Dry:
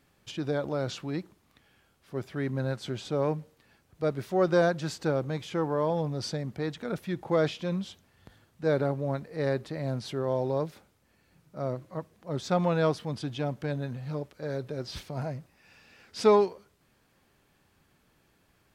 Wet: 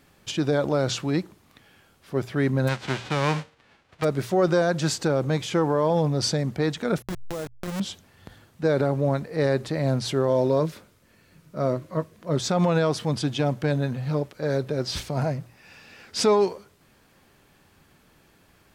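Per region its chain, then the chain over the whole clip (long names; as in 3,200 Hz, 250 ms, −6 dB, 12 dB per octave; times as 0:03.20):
0:02.67–0:04.03: spectral envelope flattened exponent 0.3 + low-pass filter 2,800 Hz
0:07.02–0:07.80: hold until the input has moved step −26 dBFS + downward compressor 10 to 1, threshold −36 dBFS
0:10.28–0:12.37: notch filter 800 Hz, Q 5.5 + double-tracking delay 19 ms −12.5 dB
whole clip: mains-hum notches 60/120 Hz; dynamic equaliser 7,500 Hz, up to +5 dB, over −56 dBFS, Q 1.1; brickwall limiter −20.5 dBFS; level +8.5 dB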